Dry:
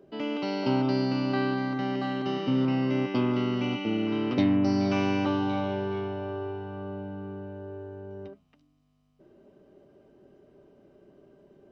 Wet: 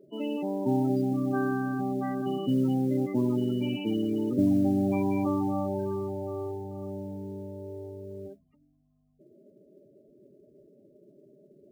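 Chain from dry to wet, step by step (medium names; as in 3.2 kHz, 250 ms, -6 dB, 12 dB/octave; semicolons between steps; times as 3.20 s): loudest bins only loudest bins 16; modulation noise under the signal 33 dB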